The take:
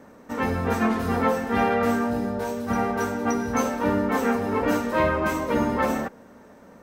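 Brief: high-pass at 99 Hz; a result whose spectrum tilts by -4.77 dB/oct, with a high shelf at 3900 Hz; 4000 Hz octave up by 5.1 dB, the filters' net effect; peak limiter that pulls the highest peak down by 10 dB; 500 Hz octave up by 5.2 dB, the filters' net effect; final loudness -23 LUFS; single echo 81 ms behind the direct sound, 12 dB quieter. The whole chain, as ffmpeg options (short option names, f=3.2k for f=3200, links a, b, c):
-af "highpass=99,equalizer=f=500:t=o:g=6,highshelf=f=3.9k:g=-3,equalizer=f=4k:t=o:g=8.5,alimiter=limit=-16dB:level=0:latency=1,aecho=1:1:81:0.251,volume=1.5dB"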